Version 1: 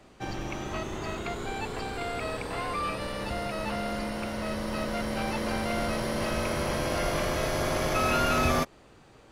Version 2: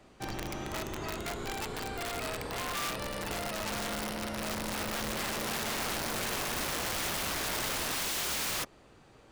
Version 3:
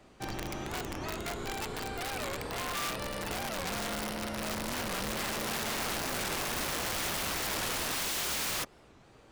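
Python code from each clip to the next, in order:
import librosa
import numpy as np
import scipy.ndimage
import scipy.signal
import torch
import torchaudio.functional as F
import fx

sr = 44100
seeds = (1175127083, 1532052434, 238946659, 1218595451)

y1 = (np.mod(10.0 ** (25.5 / 20.0) * x + 1.0, 2.0) - 1.0) / 10.0 ** (25.5 / 20.0)
y1 = y1 * librosa.db_to_amplitude(-3.0)
y2 = fx.record_warp(y1, sr, rpm=45.0, depth_cents=250.0)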